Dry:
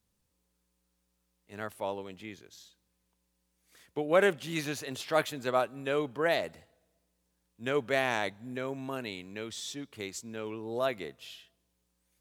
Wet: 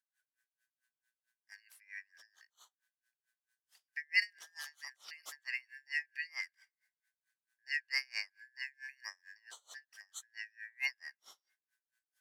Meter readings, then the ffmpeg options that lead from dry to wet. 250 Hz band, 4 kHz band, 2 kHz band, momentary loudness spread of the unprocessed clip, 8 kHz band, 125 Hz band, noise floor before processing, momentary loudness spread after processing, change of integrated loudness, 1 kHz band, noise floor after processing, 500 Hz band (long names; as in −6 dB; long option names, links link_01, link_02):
below −40 dB, −4.5 dB, −1.5 dB, 14 LU, −8.0 dB, below −40 dB, −78 dBFS, 20 LU, −7.0 dB, −27.0 dB, below −85 dBFS, below −40 dB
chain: -af "afftfilt=real='real(if(lt(b,272),68*(eq(floor(b/68),0)*2+eq(floor(b/68),1)*0+eq(floor(b/68),2)*3+eq(floor(b/68),3)*1)+mod(b,68),b),0)':imag='imag(if(lt(b,272),68*(eq(floor(b/68),0)*2+eq(floor(b/68),1)*0+eq(floor(b/68),2)*3+eq(floor(b/68),3)*1)+mod(b,68),b),0)':win_size=2048:overlap=0.75,highpass=1200,aeval=exprs='val(0)*pow(10,-32*(0.5-0.5*cos(2*PI*4.5*n/s))/20)':channel_layout=same,volume=-3.5dB"